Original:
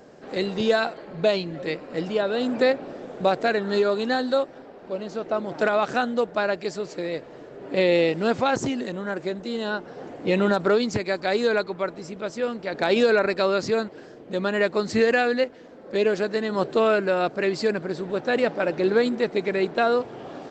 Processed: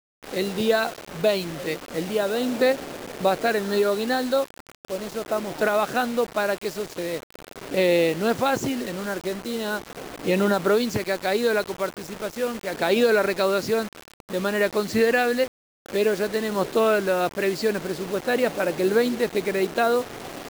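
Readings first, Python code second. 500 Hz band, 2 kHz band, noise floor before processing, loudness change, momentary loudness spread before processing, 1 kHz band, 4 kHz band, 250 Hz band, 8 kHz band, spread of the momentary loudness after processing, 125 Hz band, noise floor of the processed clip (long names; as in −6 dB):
0.0 dB, 0.0 dB, −44 dBFS, 0.0 dB, 10 LU, 0.0 dB, +1.0 dB, 0.0 dB, can't be measured, 10 LU, 0.0 dB, −59 dBFS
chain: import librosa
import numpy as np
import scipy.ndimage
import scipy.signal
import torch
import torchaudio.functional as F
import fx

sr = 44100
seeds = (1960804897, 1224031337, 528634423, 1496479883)

y = fx.quant_dither(x, sr, seeds[0], bits=6, dither='none')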